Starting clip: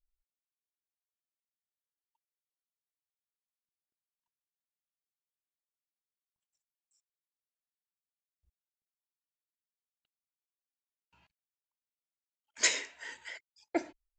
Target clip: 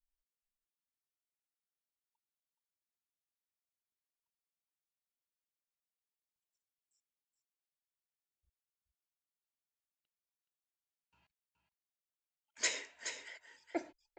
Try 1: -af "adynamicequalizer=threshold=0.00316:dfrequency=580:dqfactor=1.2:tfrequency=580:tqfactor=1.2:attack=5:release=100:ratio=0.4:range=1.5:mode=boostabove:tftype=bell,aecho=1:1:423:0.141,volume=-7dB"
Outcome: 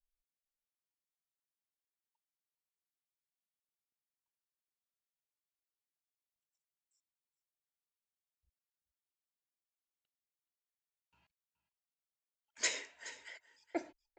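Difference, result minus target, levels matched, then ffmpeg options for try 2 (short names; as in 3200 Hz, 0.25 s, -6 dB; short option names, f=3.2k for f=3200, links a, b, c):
echo-to-direct -8 dB
-af "adynamicequalizer=threshold=0.00316:dfrequency=580:dqfactor=1.2:tfrequency=580:tqfactor=1.2:attack=5:release=100:ratio=0.4:range=1.5:mode=boostabove:tftype=bell,aecho=1:1:423:0.355,volume=-7dB"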